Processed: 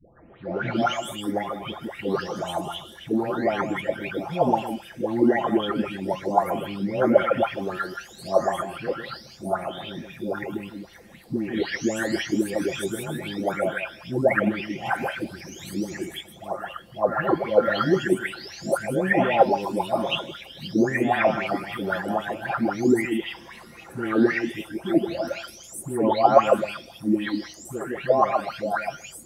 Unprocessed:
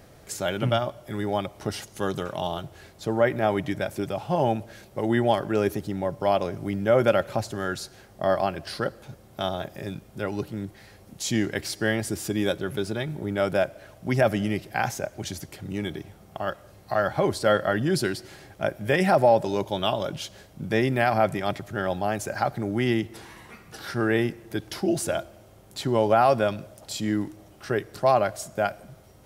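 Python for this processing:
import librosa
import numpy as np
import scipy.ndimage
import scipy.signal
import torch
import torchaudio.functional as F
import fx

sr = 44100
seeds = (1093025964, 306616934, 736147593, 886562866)

y = fx.spec_delay(x, sr, highs='late', ms=761)
y = y + 10.0 ** (-8.0 / 20.0) * np.pad(y, (int(157 * sr / 1000.0), 0))[:len(y)]
y = fx.bell_lfo(y, sr, hz=3.8, low_hz=230.0, high_hz=2900.0, db=16)
y = y * 10.0 ** (-3.0 / 20.0)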